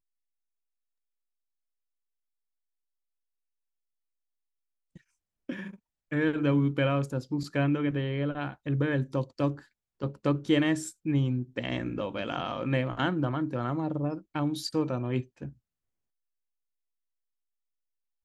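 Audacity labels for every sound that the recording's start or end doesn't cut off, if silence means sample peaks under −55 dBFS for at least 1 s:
4.960000	15.530000	sound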